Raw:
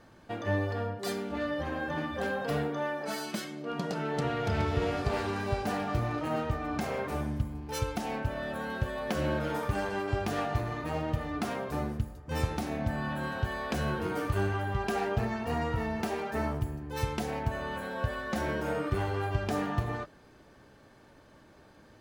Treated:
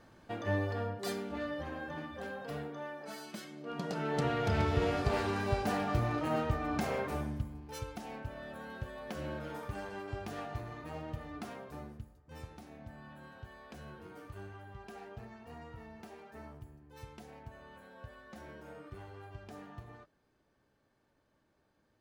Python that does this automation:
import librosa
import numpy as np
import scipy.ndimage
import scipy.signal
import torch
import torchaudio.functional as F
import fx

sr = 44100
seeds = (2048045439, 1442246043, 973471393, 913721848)

y = fx.gain(x, sr, db=fx.line((1.04, -3.0), (2.22, -10.0), (3.31, -10.0), (4.16, -1.0), (6.94, -1.0), (7.84, -10.0), (11.35, -10.0), (12.5, -18.0)))